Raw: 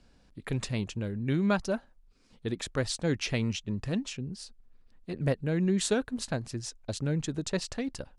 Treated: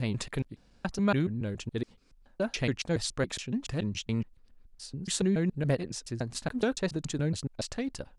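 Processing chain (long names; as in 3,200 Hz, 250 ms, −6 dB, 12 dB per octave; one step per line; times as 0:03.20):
slices reordered back to front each 141 ms, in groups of 6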